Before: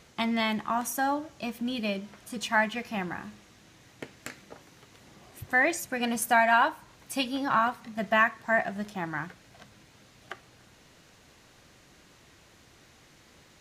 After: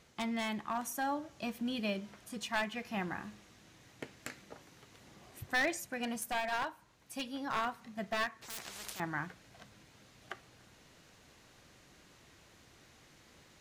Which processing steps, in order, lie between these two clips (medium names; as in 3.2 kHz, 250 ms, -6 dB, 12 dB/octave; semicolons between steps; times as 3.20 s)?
one-sided wavefolder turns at -19.5 dBFS; gain riding within 4 dB 0.5 s; 8.42–9.00 s: spectrum-flattening compressor 10:1; trim -8 dB